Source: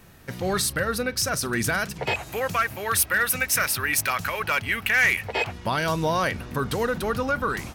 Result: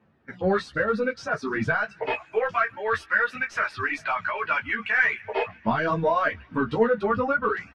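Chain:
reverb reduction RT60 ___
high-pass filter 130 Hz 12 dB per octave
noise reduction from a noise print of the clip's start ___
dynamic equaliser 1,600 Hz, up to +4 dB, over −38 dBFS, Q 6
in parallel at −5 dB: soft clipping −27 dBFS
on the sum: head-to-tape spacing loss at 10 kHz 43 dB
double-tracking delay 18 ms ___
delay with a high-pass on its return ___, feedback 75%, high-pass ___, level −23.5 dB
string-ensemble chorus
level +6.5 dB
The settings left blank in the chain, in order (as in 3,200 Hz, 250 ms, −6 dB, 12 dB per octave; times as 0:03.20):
0.98 s, 14 dB, −10.5 dB, 142 ms, 1,900 Hz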